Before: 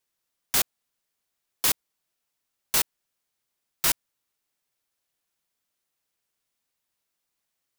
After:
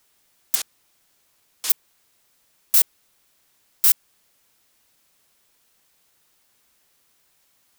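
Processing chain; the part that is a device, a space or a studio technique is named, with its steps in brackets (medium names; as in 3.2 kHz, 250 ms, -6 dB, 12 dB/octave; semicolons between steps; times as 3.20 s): 0.55–1.70 s: Bessel low-pass 5.7 kHz, order 2; turntable without a phono preamp (RIAA curve recording; white noise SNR 35 dB); trim -8.5 dB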